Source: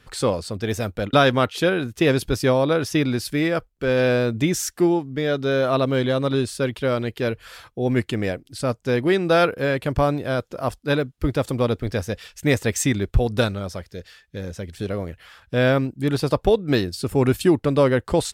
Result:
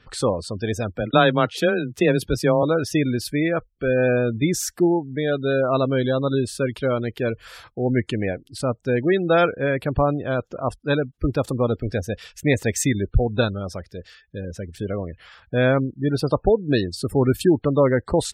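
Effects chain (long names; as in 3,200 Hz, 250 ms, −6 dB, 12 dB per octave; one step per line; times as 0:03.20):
0:00.96–0:02.63: frequency shifter +16 Hz
gate on every frequency bin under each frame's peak −25 dB strong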